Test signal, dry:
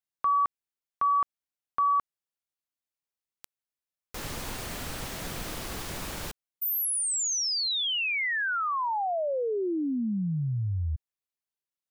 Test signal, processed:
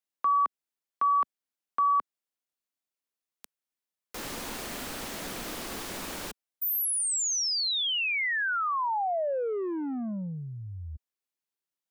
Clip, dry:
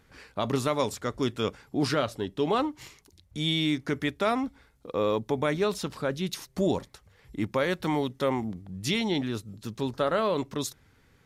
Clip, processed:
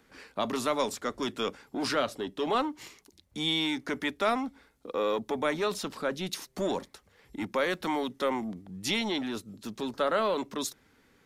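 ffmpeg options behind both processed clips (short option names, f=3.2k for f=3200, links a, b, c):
-filter_complex "[0:a]lowshelf=f=170:t=q:w=1.5:g=-8,acrossover=split=100|540|7000[a][b][c][d];[b]asoftclip=type=tanh:threshold=-32dB[e];[a][e][c][d]amix=inputs=4:normalize=0"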